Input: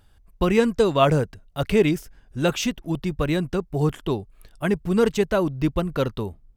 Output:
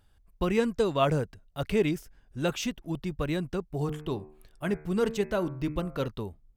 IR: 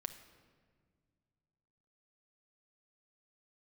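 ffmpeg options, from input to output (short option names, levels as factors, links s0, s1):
-filter_complex "[0:a]asettb=1/sr,asplit=3[s0][s1][s2];[s0]atrim=end=3.764[s3];[s1]atrim=start=3.76:end=6.08,asetpts=PTS-STARTPTS,afade=t=in:d=0.004:c=qsin,afade=t=out:st=2.316:d=0.004:c=qsin,bandreject=f=75.67:t=h:w=4,bandreject=f=151.34:t=h:w=4,bandreject=f=227.01:t=h:w=4,bandreject=f=302.68:t=h:w=4,bandreject=f=378.35:t=h:w=4,bandreject=f=454.02:t=h:w=4,bandreject=f=529.69:t=h:w=4,bandreject=f=605.36:t=h:w=4,bandreject=f=681.03:t=h:w=4,bandreject=f=756.7:t=h:w=4,bandreject=f=832.37:t=h:w=4,bandreject=f=908.04:t=h:w=4,bandreject=f=983.71:t=h:w=4,bandreject=f=1059.38:t=h:w=4,bandreject=f=1135.05:t=h:w=4,bandreject=f=1210.72:t=h:w=4,bandreject=f=1286.39:t=h:w=4,bandreject=f=1362.06:t=h:w=4,bandreject=f=1437.73:t=h:w=4,bandreject=f=1513.4:t=h:w=4,bandreject=f=1589.07:t=h:w=4,bandreject=f=1664.74:t=h:w=4,bandreject=f=1740.41:t=h:w=4,bandreject=f=1816.08:t=h:w=4,bandreject=f=1891.75:t=h:w=4,bandreject=f=1967.42:t=h:w=4,bandreject=f=2043.09:t=h:w=4,bandreject=f=2118.76:t=h:w=4,bandreject=f=2194.43:t=h:w=4,bandreject=f=2270.1:t=h:w=4,bandreject=f=2345.77:t=h:w=4,bandreject=f=2421.44:t=h:w=4,bandreject=f=2497.11:t=h:w=4,bandreject=f=2572.78:t=h:w=4[s4];[s2]atrim=start=6.076[s5];[s3][s4]acrossfade=d=0.004:c1=hsin:c2=qsin[s6];[s6][s5]acrossfade=d=0.004:c1=qsin:c2=hsin,volume=0.447"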